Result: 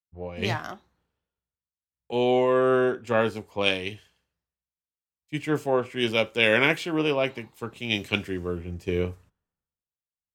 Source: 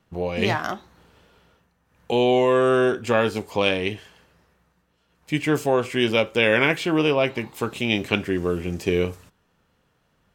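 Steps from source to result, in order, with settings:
multiband upward and downward expander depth 100%
level −4.5 dB

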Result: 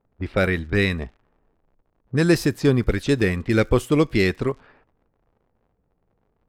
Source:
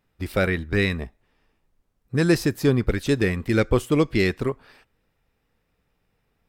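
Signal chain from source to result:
surface crackle 80 per second −41 dBFS
low-pass that shuts in the quiet parts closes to 720 Hz, open at −19 dBFS
level +1.5 dB

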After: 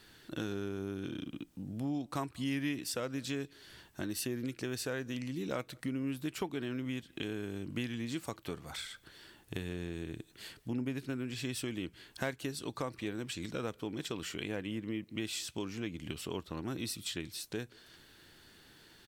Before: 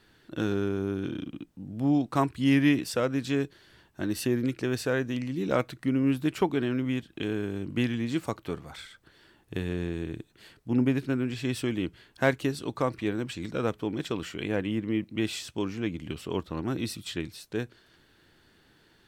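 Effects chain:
high-shelf EQ 3,200 Hz +9 dB
downward compressor 2.5 to 1, threshold −39 dBFS, peak gain reduction 14.5 dB
far-end echo of a speakerphone 190 ms, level −27 dB

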